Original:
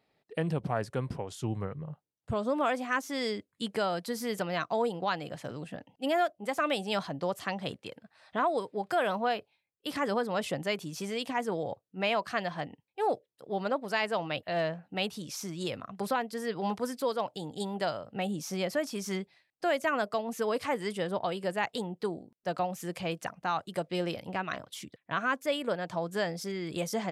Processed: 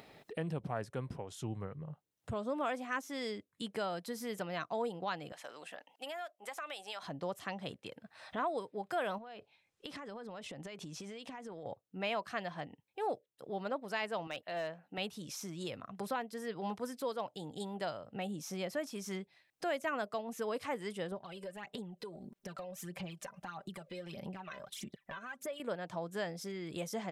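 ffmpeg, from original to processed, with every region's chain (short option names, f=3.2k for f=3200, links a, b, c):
-filter_complex "[0:a]asettb=1/sr,asplit=3[a][b][c];[a]atrim=end=5.324[d];[b]atrim=start=5.32:end=7.03,asetpts=PTS-STARTPTS,afade=t=in:d=0.004:c=qsin,afade=t=out:st=1.706:d=0.004:c=qsin,highpass=760,acompressor=threshold=-33dB:ratio=3:attack=3.2:release=140:knee=1:detection=peak[e];[c]atrim=start=7.026[f];[d][e]acrossfade=d=0.004:c1=hsin:c2=qsin[g];[g][f]acrossfade=d=0.004:c1=qsin:c2=hsin,asettb=1/sr,asplit=3[h][i][j];[h]atrim=end=9.184[k];[i]atrim=start=9.18:end=11.66,asetpts=PTS-STARTPTS,afade=t=in:d=0.004:c=qsin,afade=t=out:st=2.476:d=0.004:c=qsin,lowpass=7.6k,acompressor=threshold=-40dB:ratio=16:attack=3.2:release=140:knee=1:detection=peak[l];[j]atrim=start=11.656[m];[k][l]acrossfade=d=0.004:c1=hsin:c2=qsin[n];[n][m]acrossfade=d=0.004:c1=qsin:c2=hsin,asettb=1/sr,asplit=3[o][p][q];[o]atrim=end=14.274[r];[p]atrim=start=14.27:end=14.98,asetpts=PTS-STARTPTS,afade=t=in:d=0.004:c=qsin,afade=t=out:st=0.706:d=0.004:c=qsin,highpass=f=340:p=1,volume=23.5dB,asoftclip=hard,volume=-23.5dB[s];[q]atrim=start=14.976[t];[r][s]acrossfade=d=0.004:c1=hsin:c2=qsin[u];[u][t]acrossfade=d=0.004:c1=qsin:c2=hsin,asettb=1/sr,asplit=3[v][w][x];[v]atrim=end=21.124[y];[w]atrim=start=21.12:end=25.6,asetpts=PTS-STARTPTS,afade=t=in:d=0.004:c=qsin,afade=t=out:st=4.476:d=0.004:c=qsin,aecho=1:1:5.1:0.63,atrim=end_sample=197568,acompressor=threshold=-43dB:ratio=3:attack=3.2:release=140:knee=1:detection=peak,aphaser=in_gain=1:out_gain=1:delay=2:decay=0.6:speed=1.6:type=sinusoidal[z];[x]atrim=start=25.596[aa];[y][z]acrossfade=d=0.004:c1=hsin:c2=qsin[ab];[ab][aa]acrossfade=d=0.004:c1=qsin:c2=hsin,bandreject=f=4.6k:w=16,acompressor=mode=upward:threshold=-32dB:ratio=2.5,volume=-7dB"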